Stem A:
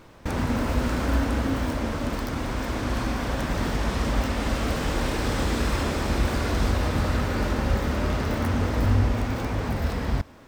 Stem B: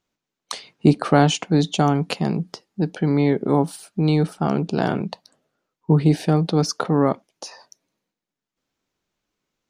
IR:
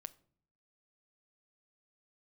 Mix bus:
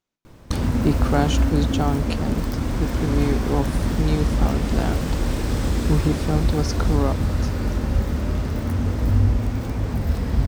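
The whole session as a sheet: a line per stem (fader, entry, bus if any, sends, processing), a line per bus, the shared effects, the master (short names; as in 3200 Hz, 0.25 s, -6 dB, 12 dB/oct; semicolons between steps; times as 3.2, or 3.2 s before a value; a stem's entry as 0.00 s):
-6.5 dB, 0.25 s, no send, low shelf 400 Hz +11.5 dB; vocal rider within 4 dB 2 s; high shelf 4700 Hz +8.5 dB
-5.5 dB, 0.00 s, no send, dry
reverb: off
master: dry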